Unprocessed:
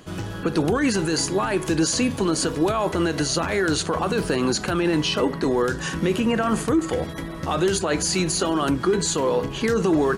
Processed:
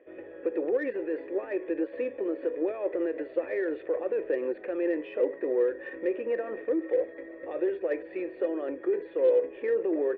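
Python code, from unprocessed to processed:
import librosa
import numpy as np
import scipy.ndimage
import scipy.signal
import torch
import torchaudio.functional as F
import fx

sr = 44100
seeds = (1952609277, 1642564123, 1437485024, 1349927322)

y = fx.formant_cascade(x, sr, vowel='e')
y = fx.cheby_harmonics(y, sr, harmonics=(5, 7, 8), levels_db=(-35, -33, -39), full_scale_db=-18.0)
y = fx.low_shelf_res(y, sr, hz=230.0, db=-13.0, q=3.0)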